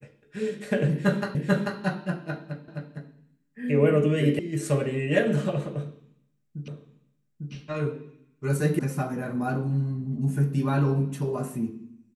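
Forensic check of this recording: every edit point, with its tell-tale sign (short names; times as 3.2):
1.35 repeat of the last 0.44 s
2.68 repeat of the last 0.26 s
4.39 sound cut off
6.68 repeat of the last 0.85 s
8.79 sound cut off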